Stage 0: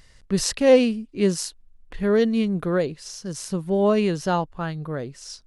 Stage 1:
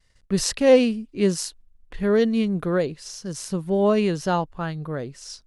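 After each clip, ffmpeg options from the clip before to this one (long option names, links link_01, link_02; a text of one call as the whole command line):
ffmpeg -i in.wav -af "agate=range=-33dB:threshold=-44dB:ratio=3:detection=peak" out.wav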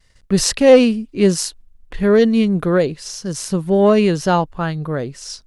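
ffmpeg -i in.wav -af "acontrast=41,volume=1.5dB" out.wav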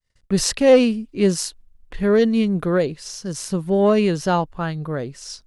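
ffmpeg -i in.wav -af "agate=range=-33dB:threshold=-45dB:ratio=3:detection=peak,volume=-3.5dB" out.wav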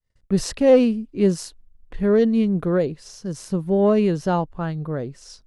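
ffmpeg -i in.wav -af "tiltshelf=frequency=1200:gain=4.5,volume=-4.5dB" out.wav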